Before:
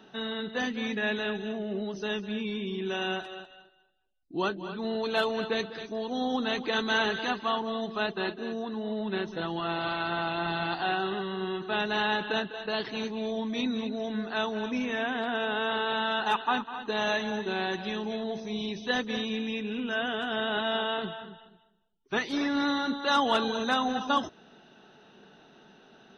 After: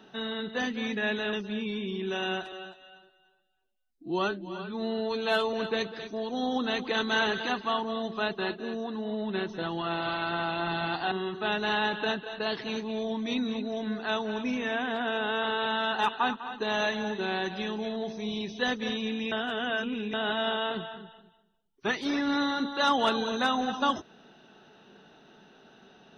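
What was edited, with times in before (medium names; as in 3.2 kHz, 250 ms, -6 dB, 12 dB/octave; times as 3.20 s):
1.33–2.12 s: delete
3.31–5.32 s: stretch 1.5×
10.90–11.39 s: delete
19.59–20.41 s: reverse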